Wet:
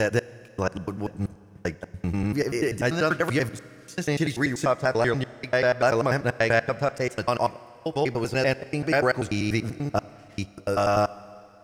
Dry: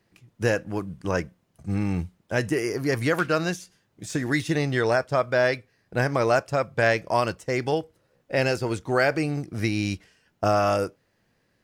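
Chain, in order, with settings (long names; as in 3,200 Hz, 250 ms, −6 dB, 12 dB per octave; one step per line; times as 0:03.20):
slices reordered back to front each 97 ms, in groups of 6
four-comb reverb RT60 2.6 s, combs from 31 ms, DRR 18 dB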